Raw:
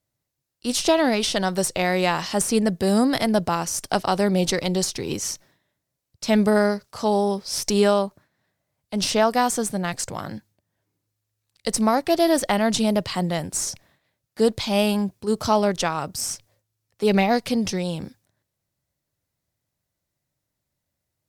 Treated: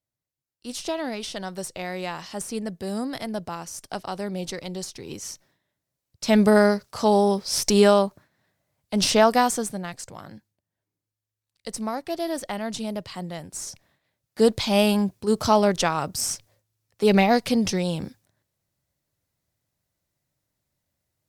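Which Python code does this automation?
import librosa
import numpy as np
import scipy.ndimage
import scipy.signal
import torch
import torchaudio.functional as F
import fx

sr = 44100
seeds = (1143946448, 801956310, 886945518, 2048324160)

y = fx.gain(x, sr, db=fx.line((4.97, -10.0), (6.52, 2.0), (9.33, 2.0), (10.0, -9.5), (13.49, -9.5), (14.44, 1.0)))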